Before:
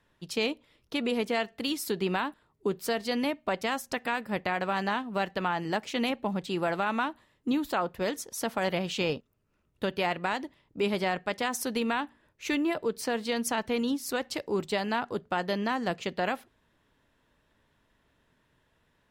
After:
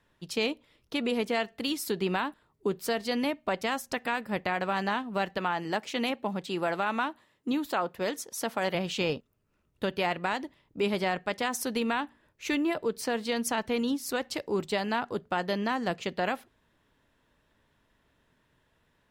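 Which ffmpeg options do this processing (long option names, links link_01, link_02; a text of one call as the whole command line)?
ffmpeg -i in.wav -filter_complex "[0:a]asettb=1/sr,asplit=3[link_01][link_02][link_03];[link_01]atrim=end=5.384[link_04];[link_02]atrim=start=5.38:end=8.75,asetpts=PTS-STARTPTS,afade=type=in:duration=0.004:curve=qsin,afade=type=out:start_time=3.366:duration=0.004:curve=qsin,highpass=frequency=180:poles=1[link_05];[link_03]atrim=start=8.746[link_06];[link_04][link_05]acrossfade=duration=0.004:curve1=hsin:curve2=qsin[link_07];[link_07][link_06]acrossfade=duration=0.004:curve1=qsin:curve2=hsin" out.wav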